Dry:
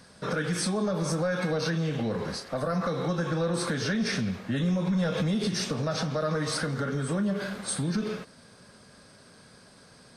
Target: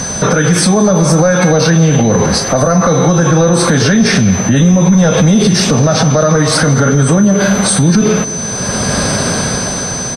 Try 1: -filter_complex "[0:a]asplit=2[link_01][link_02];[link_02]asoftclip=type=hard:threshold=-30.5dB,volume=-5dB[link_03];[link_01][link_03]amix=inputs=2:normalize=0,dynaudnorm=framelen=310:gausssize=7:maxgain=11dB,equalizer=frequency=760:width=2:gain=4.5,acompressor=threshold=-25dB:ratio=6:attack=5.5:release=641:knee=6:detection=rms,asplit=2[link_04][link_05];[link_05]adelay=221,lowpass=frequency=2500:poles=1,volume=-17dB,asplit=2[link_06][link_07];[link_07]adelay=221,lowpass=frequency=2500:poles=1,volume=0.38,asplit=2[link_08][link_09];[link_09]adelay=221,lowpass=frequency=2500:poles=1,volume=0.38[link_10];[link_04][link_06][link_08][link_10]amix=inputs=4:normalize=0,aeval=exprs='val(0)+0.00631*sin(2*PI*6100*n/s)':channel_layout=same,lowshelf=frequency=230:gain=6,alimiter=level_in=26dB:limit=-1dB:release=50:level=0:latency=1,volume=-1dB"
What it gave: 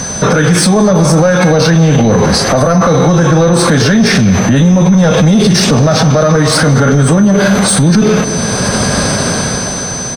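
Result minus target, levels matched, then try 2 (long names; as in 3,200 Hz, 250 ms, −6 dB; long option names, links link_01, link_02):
hard clipping: distortion +26 dB; downward compressor: peak gain reduction −7.5 dB
-filter_complex "[0:a]asplit=2[link_01][link_02];[link_02]asoftclip=type=hard:threshold=-21.5dB,volume=-5dB[link_03];[link_01][link_03]amix=inputs=2:normalize=0,dynaudnorm=framelen=310:gausssize=7:maxgain=11dB,equalizer=frequency=760:width=2:gain=4.5,acompressor=threshold=-32dB:ratio=6:attack=5.5:release=641:knee=6:detection=rms,asplit=2[link_04][link_05];[link_05]adelay=221,lowpass=frequency=2500:poles=1,volume=-17dB,asplit=2[link_06][link_07];[link_07]adelay=221,lowpass=frequency=2500:poles=1,volume=0.38,asplit=2[link_08][link_09];[link_09]adelay=221,lowpass=frequency=2500:poles=1,volume=0.38[link_10];[link_04][link_06][link_08][link_10]amix=inputs=4:normalize=0,aeval=exprs='val(0)+0.00631*sin(2*PI*6100*n/s)':channel_layout=same,lowshelf=frequency=230:gain=6,alimiter=level_in=26dB:limit=-1dB:release=50:level=0:latency=1,volume=-1dB"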